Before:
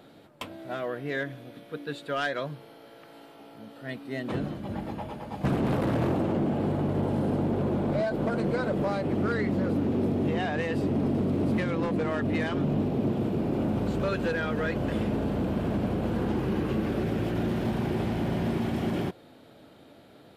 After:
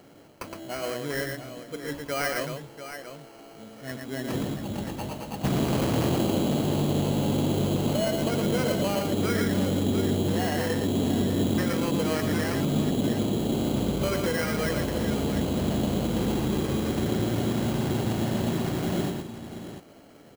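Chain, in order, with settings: sample-rate reducer 3600 Hz, jitter 0%; tapped delay 0.115/0.692 s -4.5/-10.5 dB

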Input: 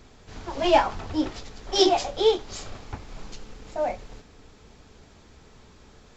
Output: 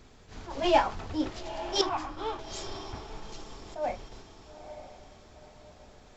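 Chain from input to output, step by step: 1.81–2.39 EQ curve 110 Hz 0 dB, 610 Hz -18 dB, 1100 Hz +12 dB, 3300 Hz -14 dB; diffused feedback echo 0.919 s, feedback 41%, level -13 dB; attack slew limiter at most 160 dB/s; gain -3.5 dB

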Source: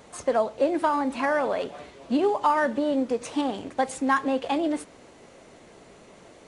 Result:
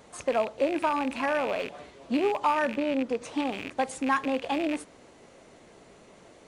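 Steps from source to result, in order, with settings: rattling part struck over -43 dBFS, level -22 dBFS; 2.74–3.44 high shelf 5000 Hz -> 8900 Hz -6.5 dB; gain -3 dB

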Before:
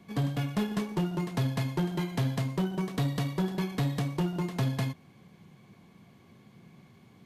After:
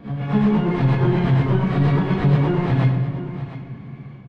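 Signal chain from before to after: spectral swells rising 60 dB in 0.51 s; Chebyshev low-pass 2100 Hz, order 2; low shelf 120 Hz +6 dB; limiter -23 dBFS, peak gain reduction 5.5 dB; AGC gain up to 14 dB; plain phase-vocoder stretch 0.59×; soft clip -12 dBFS, distortion -19 dB; echo 0.706 s -13.5 dB; reverb RT60 1.8 s, pre-delay 14 ms, DRR 4.5 dB

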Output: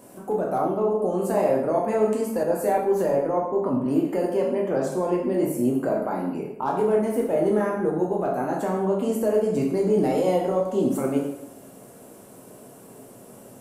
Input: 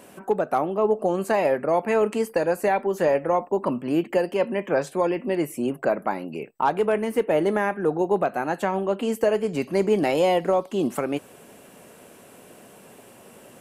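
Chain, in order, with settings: bell 2400 Hz -12 dB 1.9 oct; limiter -17.5 dBFS, peak gain reduction 6 dB; plate-style reverb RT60 0.84 s, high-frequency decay 0.8×, DRR -2 dB; 2.43–3.86 three-band expander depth 40%

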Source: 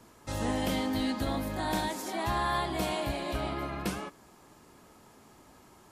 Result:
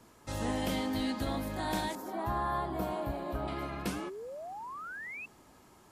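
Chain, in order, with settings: 1.95–3.48 band shelf 4500 Hz -12.5 dB 2.7 oct; 3.86–5.26 painted sound rise 250–2700 Hz -40 dBFS; gain -2.5 dB

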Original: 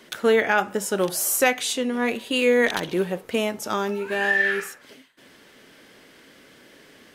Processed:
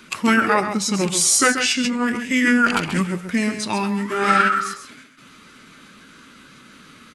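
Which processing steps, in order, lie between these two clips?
bin magnitudes rounded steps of 15 dB; bell 630 Hz -9 dB 1.7 oct; echo 0.134 s -8.5 dB; formant shift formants -5 st; gain +7.5 dB

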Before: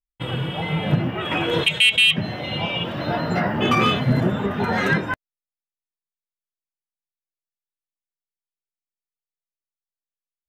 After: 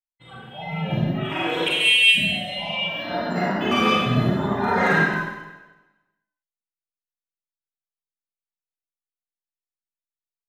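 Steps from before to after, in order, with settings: spectral noise reduction 16 dB; 4.37–4.95 bell 1000 Hz +6.5 dB 1.6 oct; Schroeder reverb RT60 1.1 s, combs from 33 ms, DRR -6 dB; gain -7.5 dB

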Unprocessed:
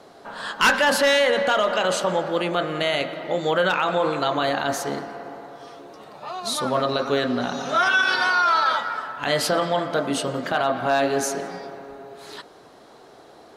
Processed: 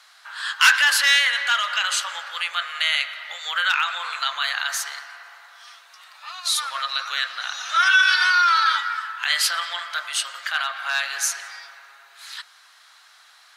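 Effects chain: octaver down 1 oct, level -4 dB; HPF 1400 Hz 24 dB/oct; gain +5.5 dB

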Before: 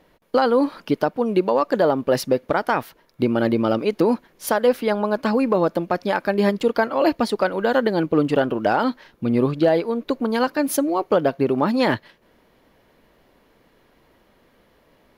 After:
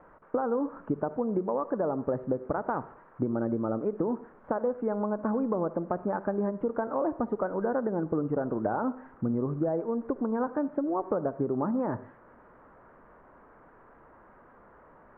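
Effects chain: switching spikes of -24 dBFS; steep low-pass 1400 Hz 36 dB/oct; low shelf 210 Hz +4.5 dB; compressor, threshold -21 dBFS, peak gain reduction 9.5 dB; reverb, pre-delay 53 ms, DRR 15 dB; gain -4.5 dB

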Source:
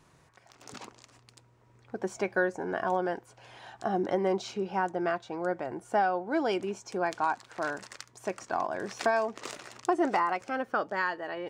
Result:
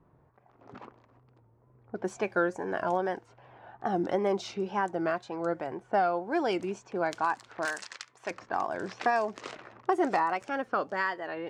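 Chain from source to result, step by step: wow and flutter 100 cents; 7.65–8.31 tilt +4 dB/oct; low-pass opened by the level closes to 830 Hz, open at -28 dBFS

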